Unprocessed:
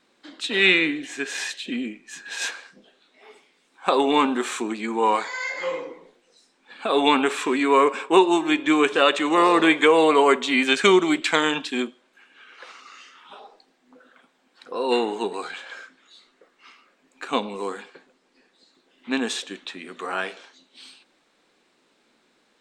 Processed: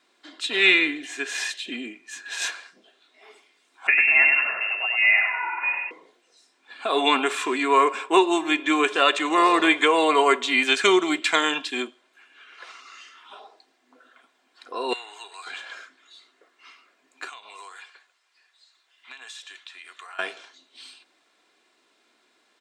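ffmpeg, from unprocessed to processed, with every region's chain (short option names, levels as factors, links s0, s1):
-filter_complex "[0:a]asettb=1/sr,asplit=3[s0][s1][s2];[s0]atrim=end=3.874[s3];[s1]atrim=start=3.87:end=5.91,asetpts=PTS-STARTPTS,afade=t=in:d=0.004:c=qsin,afade=t=out:st=2.036:d=0.004:c=qsin,lowpass=f=2600:t=q:w=0.5098,lowpass=f=2600:t=q:w=0.6013,lowpass=f=2600:t=q:w=0.9,lowpass=f=2600:t=q:w=2.563,afreqshift=-3000,aecho=1:1:98|196|294|392|490:0.596|0.262|0.115|0.0507|0.0223,atrim=end_sample=89964[s4];[s2]atrim=start=5.906[s5];[s3][s4]acrossfade=d=0.004:c1=hsin:c2=qsin[s6];[s6][s5]acrossfade=d=0.004:c1=qsin:c2=hsin,asettb=1/sr,asplit=3[s7][s8][s9];[s7]atrim=end=14.934[s10];[s8]atrim=start=14.93:end=15.47,asetpts=PTS-STARTPTS,afade=t=in:d=0.004:c=qsin,afade=t=out:st=0.536:d=0.004:c=qsin,highpass=1300,acompressor=threshold=0.0112:ratio=2:attack=3.2:release=140:knee=1:detection=peak[s11];[s9]atrim=start=15.466[s12];[s10][s11]acrossfade=d=0.004:c1=hsin:c2=qsin[s13];[s13][s12]acrossfade=d=0.004:c1=qsin:c2=hsin,asettb=1/sr,asplit=3[s14][s15][s16];[s14]atrim=end=17.294[s17];[s15]atrim=start=17.29:end=20.19,asetpts=PTS-STARTPTS,afade=t=in:d=0.004:c=qsin,afade=t=out:st=2.896:d=0.004:c=qsin,highpass=1100,acompressor=threshold=0.0126:ratio=12:attack=3.2:release=140:knee=1:detection=peak[s18];[s16]atrim=start=20.186[s19];[s17][s18]acrossfade=d=0.004:c1=hsin:c2=qsin[s20];[s20][s19]acrossfade=d=0.004:c1=qsin:c2=hsin,highpass=160,equalizer=f=230:t=o:w=2.2:g=-7,aecho=1:1:2.9:0.41"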